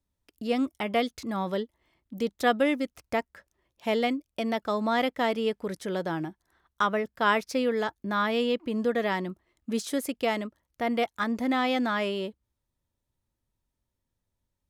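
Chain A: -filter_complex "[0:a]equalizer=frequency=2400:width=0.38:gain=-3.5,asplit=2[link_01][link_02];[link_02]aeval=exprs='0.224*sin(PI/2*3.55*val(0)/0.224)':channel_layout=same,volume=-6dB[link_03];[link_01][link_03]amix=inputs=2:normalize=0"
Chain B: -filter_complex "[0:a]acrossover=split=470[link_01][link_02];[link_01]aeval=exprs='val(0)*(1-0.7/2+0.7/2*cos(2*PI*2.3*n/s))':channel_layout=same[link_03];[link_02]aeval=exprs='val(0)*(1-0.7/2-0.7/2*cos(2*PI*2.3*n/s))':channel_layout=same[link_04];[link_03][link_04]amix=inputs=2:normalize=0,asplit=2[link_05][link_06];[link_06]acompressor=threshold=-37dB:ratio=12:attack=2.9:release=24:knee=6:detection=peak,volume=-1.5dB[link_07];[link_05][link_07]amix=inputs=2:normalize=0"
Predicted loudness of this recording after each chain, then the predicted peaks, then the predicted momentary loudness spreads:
−21.5, −30.0 LKFS; −15.0, −12.0 dBFS; 7, 8 LU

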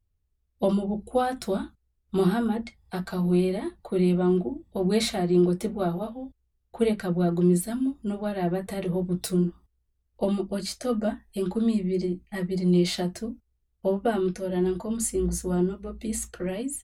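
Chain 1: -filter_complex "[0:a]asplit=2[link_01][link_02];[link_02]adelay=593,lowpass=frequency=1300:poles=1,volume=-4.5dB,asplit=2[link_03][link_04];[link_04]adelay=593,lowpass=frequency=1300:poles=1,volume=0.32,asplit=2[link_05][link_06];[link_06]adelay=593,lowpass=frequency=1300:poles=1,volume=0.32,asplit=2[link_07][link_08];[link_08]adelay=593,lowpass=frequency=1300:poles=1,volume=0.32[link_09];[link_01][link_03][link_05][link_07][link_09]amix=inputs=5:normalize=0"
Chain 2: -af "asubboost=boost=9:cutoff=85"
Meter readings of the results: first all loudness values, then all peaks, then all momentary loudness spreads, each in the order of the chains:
−26.0, −27.5 LKFS; −10.0, −9.0 dBFS; 8, 10 LU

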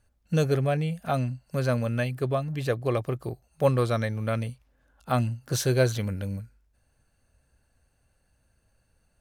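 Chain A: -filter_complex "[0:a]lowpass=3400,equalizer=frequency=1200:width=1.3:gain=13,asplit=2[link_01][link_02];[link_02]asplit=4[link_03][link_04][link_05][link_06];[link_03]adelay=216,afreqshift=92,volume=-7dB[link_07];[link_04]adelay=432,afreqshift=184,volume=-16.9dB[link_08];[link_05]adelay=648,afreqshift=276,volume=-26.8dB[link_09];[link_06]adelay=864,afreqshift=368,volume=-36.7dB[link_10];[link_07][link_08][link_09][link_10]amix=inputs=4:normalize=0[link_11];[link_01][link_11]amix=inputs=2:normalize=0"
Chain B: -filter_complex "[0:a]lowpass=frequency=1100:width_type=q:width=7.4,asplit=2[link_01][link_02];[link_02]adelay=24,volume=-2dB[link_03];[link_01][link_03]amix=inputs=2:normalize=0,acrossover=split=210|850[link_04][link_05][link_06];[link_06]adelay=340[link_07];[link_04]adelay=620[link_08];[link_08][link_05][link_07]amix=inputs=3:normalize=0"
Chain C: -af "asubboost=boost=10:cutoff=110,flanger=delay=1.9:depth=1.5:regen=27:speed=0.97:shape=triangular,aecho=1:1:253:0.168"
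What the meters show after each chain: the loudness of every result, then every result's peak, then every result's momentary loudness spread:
−24.0, −24.5, −27.5 LKFS; −4.0, −5.5, −12.5 dBFS; 11, 8, 12 LU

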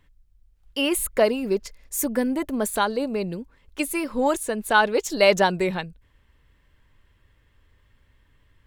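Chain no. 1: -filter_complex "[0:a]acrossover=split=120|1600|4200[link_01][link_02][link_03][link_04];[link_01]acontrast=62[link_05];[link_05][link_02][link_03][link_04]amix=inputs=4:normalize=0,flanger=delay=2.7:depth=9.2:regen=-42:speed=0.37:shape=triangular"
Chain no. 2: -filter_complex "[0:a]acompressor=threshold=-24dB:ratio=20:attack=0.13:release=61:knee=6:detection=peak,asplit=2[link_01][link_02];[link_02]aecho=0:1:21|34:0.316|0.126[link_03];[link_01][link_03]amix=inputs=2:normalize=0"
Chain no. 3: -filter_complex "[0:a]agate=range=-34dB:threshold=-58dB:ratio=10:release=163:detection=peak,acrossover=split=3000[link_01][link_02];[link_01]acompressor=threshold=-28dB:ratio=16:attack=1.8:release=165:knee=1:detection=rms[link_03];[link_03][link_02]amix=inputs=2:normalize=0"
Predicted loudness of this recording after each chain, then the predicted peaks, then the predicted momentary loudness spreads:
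−27.0, −31.5, −31.0 LKFS; −7.5, −20.5, −14.5 dBFS; 13, 6, 9 LU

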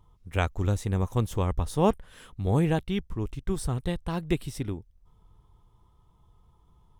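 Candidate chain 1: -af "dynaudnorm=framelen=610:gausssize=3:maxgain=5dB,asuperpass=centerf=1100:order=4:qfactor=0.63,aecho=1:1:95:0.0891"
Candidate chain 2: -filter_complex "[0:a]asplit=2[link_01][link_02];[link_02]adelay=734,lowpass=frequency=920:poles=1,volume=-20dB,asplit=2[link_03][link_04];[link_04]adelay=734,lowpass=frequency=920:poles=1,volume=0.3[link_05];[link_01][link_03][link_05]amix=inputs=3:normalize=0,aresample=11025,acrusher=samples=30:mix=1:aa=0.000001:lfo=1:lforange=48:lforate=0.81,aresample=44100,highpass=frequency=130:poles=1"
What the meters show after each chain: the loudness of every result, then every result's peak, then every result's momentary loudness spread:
−32.5, −32.5 LKFS; −9.0, −8.5 dBFS; 18, 10 LU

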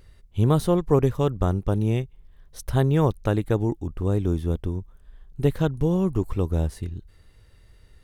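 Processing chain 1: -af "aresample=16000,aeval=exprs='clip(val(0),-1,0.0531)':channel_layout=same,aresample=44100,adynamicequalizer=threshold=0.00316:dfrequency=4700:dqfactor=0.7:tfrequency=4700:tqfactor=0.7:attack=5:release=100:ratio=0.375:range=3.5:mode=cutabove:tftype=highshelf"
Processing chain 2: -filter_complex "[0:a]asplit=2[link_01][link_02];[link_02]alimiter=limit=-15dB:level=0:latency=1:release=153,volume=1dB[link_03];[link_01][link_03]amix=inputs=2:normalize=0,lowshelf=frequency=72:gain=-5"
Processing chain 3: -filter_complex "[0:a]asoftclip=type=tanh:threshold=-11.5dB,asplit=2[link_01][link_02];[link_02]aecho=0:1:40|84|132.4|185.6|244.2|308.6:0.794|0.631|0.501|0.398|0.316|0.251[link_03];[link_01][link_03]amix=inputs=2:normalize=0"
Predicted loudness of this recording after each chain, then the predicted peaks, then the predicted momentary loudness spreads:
−25.5, −20.5, −21.5 LKFS; −6.0, −3.5, −6.5 dBFS; 13, 13, 14 LU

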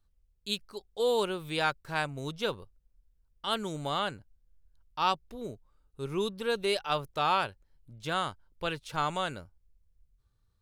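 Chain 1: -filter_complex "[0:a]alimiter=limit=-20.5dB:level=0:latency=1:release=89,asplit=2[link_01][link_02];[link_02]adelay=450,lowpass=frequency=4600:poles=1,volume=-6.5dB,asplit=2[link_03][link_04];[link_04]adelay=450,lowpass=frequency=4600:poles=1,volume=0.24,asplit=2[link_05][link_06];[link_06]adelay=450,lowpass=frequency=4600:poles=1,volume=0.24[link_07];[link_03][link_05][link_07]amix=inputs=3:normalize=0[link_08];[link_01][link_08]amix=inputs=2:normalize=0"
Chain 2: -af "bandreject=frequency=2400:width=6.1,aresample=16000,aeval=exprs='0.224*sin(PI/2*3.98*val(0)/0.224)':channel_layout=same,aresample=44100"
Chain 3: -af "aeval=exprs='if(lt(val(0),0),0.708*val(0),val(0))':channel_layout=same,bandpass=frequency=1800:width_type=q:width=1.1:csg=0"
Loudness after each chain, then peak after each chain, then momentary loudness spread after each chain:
−34.0, −21.0, −38.5 LKFS; −17.0, −8.5, −18.5 dBFS; 12, 10, 16 LU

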